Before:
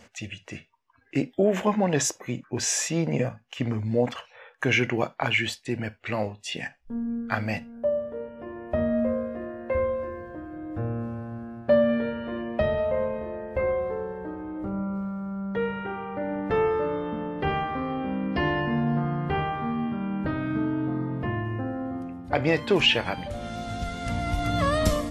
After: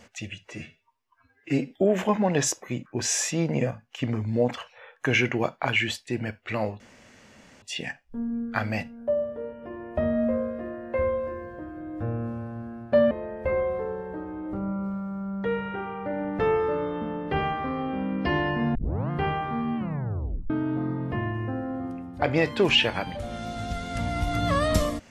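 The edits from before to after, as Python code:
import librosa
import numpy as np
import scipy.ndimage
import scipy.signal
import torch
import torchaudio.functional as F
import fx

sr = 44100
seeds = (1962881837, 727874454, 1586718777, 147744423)

y = fx.edit(x, sr, fx.stretch_span(start_s=0.45, length_s=0.84, factor=1.5),
    fx.insert_room_tone(at_s=6.38, length_s=0.82),
    fx.cut(start_s=11.87, length_s=1.35),
    fx.tape_start(start_s=18.86, length_s=0.35),
    fx.tape_stop(start_s=19.88, length_s=0.73), tone=tone)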